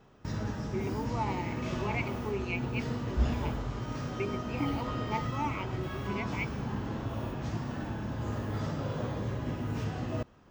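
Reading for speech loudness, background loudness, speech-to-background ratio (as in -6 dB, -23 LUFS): -38.5 LUFS, -35.5 LUFS, -3.0 dB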